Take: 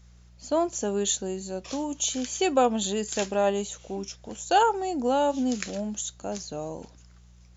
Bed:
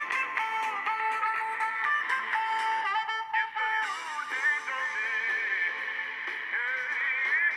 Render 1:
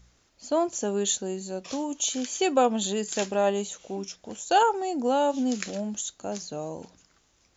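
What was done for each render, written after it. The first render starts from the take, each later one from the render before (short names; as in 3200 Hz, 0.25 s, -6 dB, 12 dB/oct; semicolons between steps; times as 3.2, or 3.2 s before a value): de-hum 60 Hz, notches 3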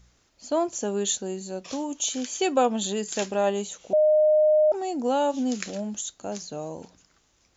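3.93–4.72 bleep 613 Hz -15.5 dBFS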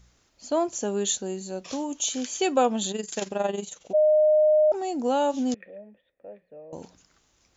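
2.91–3.95 AM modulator 22 Hz, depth 55%; 5.54–6.73 vocal tract filter e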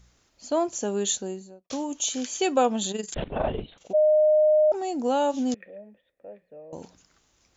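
1.17–1.7 studio fade out; 3.14–3.78 LPC vocoder at 8 kHz whisper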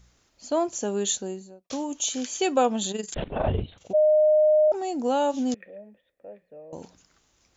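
3.46–4.68 bell 88 Hz +13 dB 1.3 oct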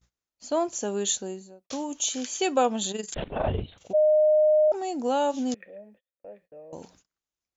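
gate -55 dBFS, range -27 dB; low shelf 430 Hz -3 dB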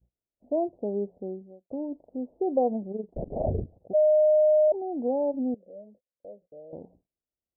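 steep low-pass 720 Hz 48 dB/oct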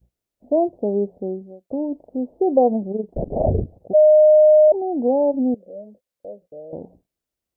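gain +8.5 dB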